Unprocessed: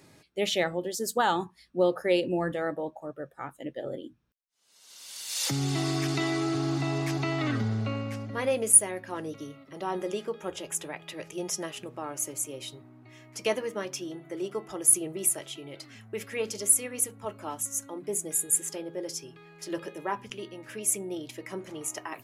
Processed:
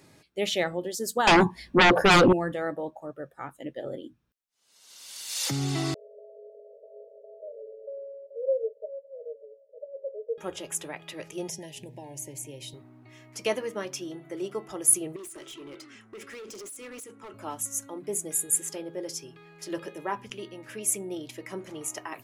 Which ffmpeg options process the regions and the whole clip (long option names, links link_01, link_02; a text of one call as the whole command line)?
ffmpeg -i in.wav -filter_complex "[0:a]asettb=1/sr,asplit=3[link_01][link_02][link_03];[link_01]atrim=end=1.274[link_04];[link_02]atrim=start=1.27:end=2.33,asetpts=PTS-STARTPTS,afade=type=in:duration=0.004:curve=qsin,afade=type=out:start_time=1.056:duration=0.004:curve=qsin,asuperstop=centerf=1300:order=4:qfactor=4.4,highshelf=frequency=2700:gain=-11.5,aeval=exprs='0.211*sin(PI/2*5.62*val(0)/0.211)':channel_layout=same[link_05];[link_03]atrim=start=2.326[link_06];[link_04][link_05]acrossfade=duration=0.004:curve1=hsin:curve2=qsin[link_07];[link_07][link_06]acrossfade=duration=0.004:curve1=qsin:curve2=hsin,asettb=1/sr,asplit=3[link_08][link_09][link_10];[link_08]atrim=end=5.944[link_11];[link_09]atrim=start=5.94:end=10.38,asetpts=PTS-STARTPTS,afade=type=in:duration=0.004:curve=qsin,afade=type=out:start_time=4.436:duration=0.004:curve=qsin,asuperpass=centerf=520:order=20:qfactor=2.5,aemphasis=mode=reproduction:type=bsi[link_12];[link_10]atrim=start=10.376[link_13];[link_11][link_12]acrossfade=duration=0.004:curve1=hsin:curve2=qsin[link_14];[link_14][link_13]acrossfade=duration=0.004:curve1=qsin:curve2=hsin,asettb=1/sr,asplit=3[link_15][link_16][link_17];[link_15]atrim=end=11.484[link_18];[link_16]atrim=start=11.48:end=12.74,asetpts=PTS-STARTPTS,afade=type=in:duration=0.004:curve=qsin,afade=type=out:start_time=1.256:duration=0.004:curve=qsin,equalizer=frequency=140:width_type=o:width=0.59:gain=10,acrossover=split=950|3000[link_19][link_20][link_21];[link_19]acompressor=threshold=-41dB:ratio=4[link_22];[link_20]acompressor=threshold=-54dB:ratio=4[link_23];[link_21]acompressor=threshold=-37dB:ratio=4[link_24];[link_22][link_23][link_24]amix=inputs=3:normalize=0,asuperstop=centerf=1300:order=12:qfactor=1.9[link_25];[link_17]atrim=start=12.736[link_26];[link_18][link_25]acrossfade=duration=0.004:curve1=hsin:curve2=qsin[link_27];[link_27][link_26]acrossfade=duration=0.004:curve1=qsin:curve2=hsin,asettb=1/sr,asplit=3[link_28][link_29][link_30];[link_28]atrim=end=15.164[link_31];[link_29]atrim=start=15.16:end=17.34,asetpts=PTS-STARTPTS,afade=type=in:duration=0.004:curve=qsin,afade=type=out:start_time=2.176:duration=0.004:curve=qsin,highpass=220,equalizer=frequency=350:width_type=q:width=4:gain=10,equalizer=frequency=690:width_type=q:width=4:gain=-8,equalizer=frequency=1300:width_type=q:width=4:gain=5,equalizer=frequency=4300:width_type=q:width=4:gain=-5,lowpass=frequency=9900:width=0.5412,lowpass=frequency=9900:width=1.3066,acompressor=threshold=-34dB:ratio=12:attack=3.2:release=140:knee=1:detection=peak,asoftclip=type=hard:threshold=-39.5dB[link_32];[link_30]atrim=start=17.336[link_33];[link_31][link_32]acrossfade=duration=0.004:curve1=hsin:curve2=qsin[link_34];[link_34][link_33]acrossfade=duration=0.004:curve1=qsin:curve2=hsin" out.wav